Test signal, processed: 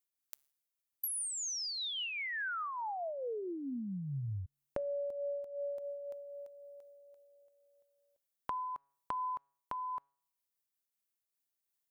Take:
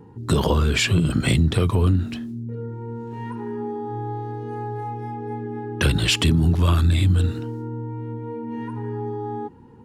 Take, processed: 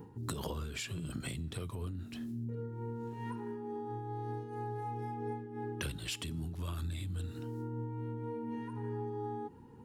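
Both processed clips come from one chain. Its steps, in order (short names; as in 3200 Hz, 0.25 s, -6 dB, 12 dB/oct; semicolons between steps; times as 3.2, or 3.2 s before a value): high shelf 7500 Hz +11.5 dB; compressor 10:1, threshold -31 dBFS; resonator 140 Hz, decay 0.71 s, harmonics all, mix 30%; noise-modulated level, depth 65%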